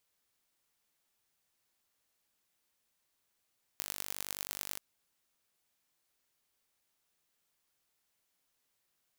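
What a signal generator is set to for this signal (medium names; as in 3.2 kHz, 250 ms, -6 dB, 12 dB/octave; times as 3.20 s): pulse train 49.3 per s, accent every 5, -8 dBFS 0.99 s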